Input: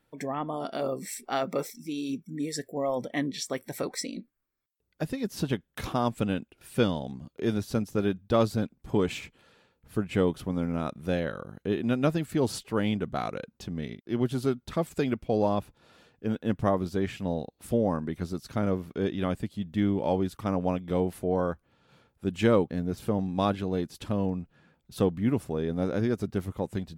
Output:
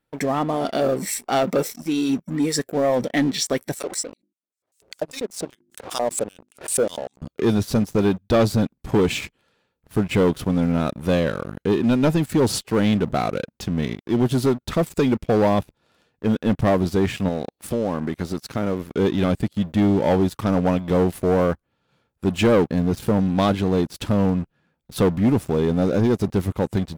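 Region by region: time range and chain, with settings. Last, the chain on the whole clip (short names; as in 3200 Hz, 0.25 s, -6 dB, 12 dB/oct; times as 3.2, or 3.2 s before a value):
3.74–7.22 notches 50/100/150/200/250/300/350 Hz + LFO band-pass square 5.1 Hz 570–8000 Hz + backwards sustainer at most 120 dB/s
17.28–18.91 low shelf 140 Hz -8 dB + compressor 2.5:1, threshold -32 dBFS
whole clip: dynamic EQ 1300 Hz, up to -3 dB, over -39 dBFS, Q 1; sample leveller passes 3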